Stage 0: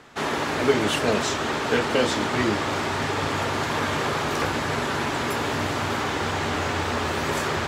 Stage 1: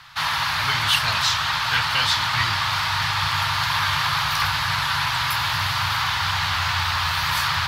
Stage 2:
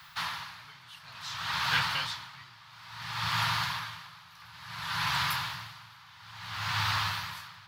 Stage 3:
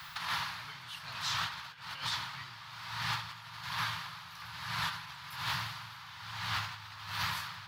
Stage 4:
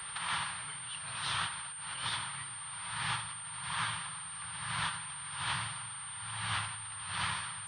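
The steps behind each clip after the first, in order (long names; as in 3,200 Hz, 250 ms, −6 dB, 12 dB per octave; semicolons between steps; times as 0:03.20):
drawn EQ curve 140 Hz 0 dB, 210 Hz −21 dB, 440 Hz −29 dB, 960 Hz +2 dB, 2,300 Hz +2 dB, 4,500 Hz +9 dB, 7,500 Hz −5 dB, 12,000 Hz +8 dB; level +3 dB
frequency shifter +16 Hz; background noise violet −58 dBFS; tremolo with a sine in dB 0.58 Hz, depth 25 dB; level −6 dB
compressor whose output falls as the input rises −37 dBFS, ratio −0.5
parametric band 3,200 Hz +4.5 dB 0.27 octaves; backwards echo 74 ms −11 dB; switching amplifier with a slow clock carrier 8,900 Hz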